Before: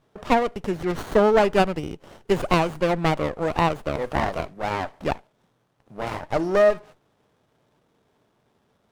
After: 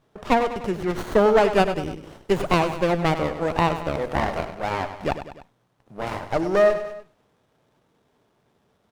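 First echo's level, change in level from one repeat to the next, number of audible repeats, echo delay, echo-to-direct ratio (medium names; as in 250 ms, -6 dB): -11.0 dB, -5.0 dB, 3, 99 ms, -9.5 dB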